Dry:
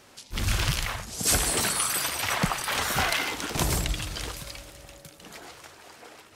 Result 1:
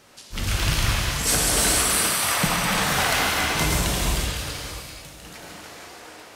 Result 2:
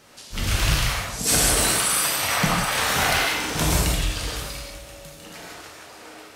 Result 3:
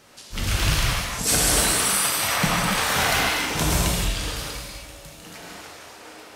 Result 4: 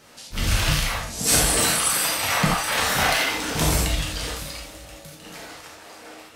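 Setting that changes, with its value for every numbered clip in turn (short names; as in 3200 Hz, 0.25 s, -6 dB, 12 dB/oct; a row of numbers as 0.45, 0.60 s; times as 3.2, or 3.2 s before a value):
non-linear reverb, gate: 0.52, 0.21, 0.31, 0.11 s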